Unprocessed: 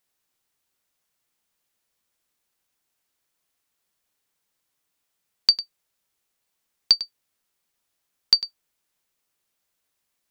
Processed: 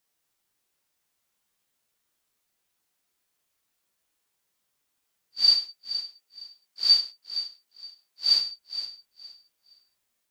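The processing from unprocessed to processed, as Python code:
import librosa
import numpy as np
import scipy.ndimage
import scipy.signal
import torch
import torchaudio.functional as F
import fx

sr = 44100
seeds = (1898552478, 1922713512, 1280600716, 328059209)

y = fx.phase_scramble(x, sr, seeds[0], window_ms=200)
y = fx.highpass(y, sr, hz=220.0, slope=6, at=(5.53, 8.39))
y = fx.echo_feedback(y, sr, ms=467, feedback_pct=23, wet_db=-12)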